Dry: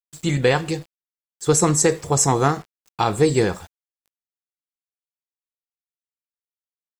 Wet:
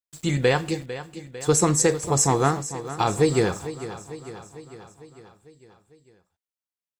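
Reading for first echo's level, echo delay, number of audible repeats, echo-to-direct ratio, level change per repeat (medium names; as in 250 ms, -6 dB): -13.5 dB, 450 ms, 5, -11.5 dB, -4.5 dB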